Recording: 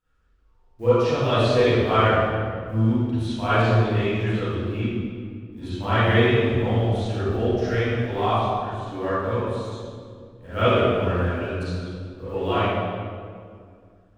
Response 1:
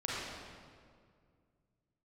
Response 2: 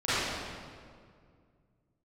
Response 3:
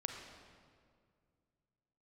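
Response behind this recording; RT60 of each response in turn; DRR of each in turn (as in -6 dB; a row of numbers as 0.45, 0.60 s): 2; 2.1, 2.1, 2.1 s; -7.0, -16.5, 3.0 dB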